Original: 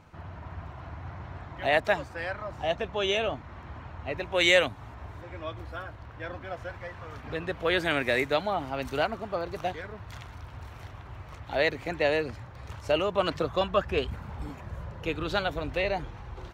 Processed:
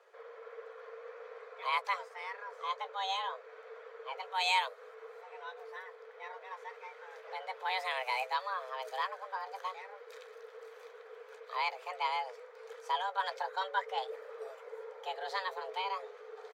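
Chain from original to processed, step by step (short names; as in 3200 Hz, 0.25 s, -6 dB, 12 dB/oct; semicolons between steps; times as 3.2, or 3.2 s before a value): doubler 15 ms -13 dB; frequency shift +380 Hz; notch 2800 Hz, Q 11; gain -8.5 dB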